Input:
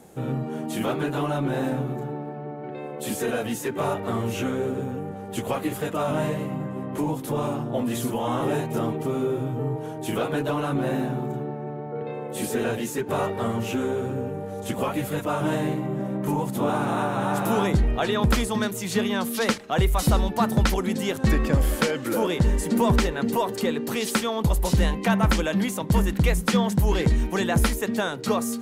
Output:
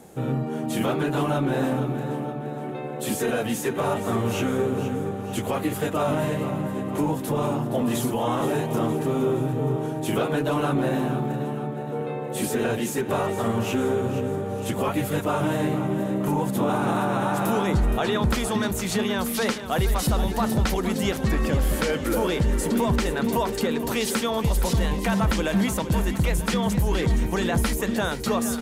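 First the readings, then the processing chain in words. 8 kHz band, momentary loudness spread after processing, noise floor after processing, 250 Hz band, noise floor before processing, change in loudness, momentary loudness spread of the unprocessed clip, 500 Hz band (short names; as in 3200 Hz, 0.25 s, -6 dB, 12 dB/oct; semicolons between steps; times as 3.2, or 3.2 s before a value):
+1.5 dB, 5 LU, -31 dBFS, +1.0 dB, -35 dBFS, +0.5 dB, 9 LU, +1.0 dB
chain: limiter -17 dBFS, peak gain reduction 6 dB; on a send: feedback echo 0.469 s, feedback 56%, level -11.5 dB; on the sum: gain +2 dB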